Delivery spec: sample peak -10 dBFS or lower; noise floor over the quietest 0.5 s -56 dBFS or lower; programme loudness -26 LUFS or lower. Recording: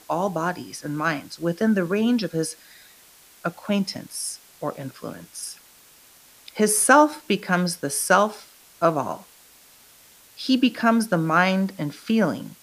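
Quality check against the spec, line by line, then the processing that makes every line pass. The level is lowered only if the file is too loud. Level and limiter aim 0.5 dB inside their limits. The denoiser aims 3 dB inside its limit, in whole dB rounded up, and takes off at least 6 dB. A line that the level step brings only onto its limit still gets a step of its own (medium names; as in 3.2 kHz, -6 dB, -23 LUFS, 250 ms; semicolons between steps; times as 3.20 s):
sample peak -2.0 dBFS: fail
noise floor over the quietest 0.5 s -52 dBFS: fail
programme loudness -22.5 LUFS: fail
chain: noise reduction 6 dB, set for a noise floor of -52 dBFS; trim -4 dB; peak limiter -10.5 dBFS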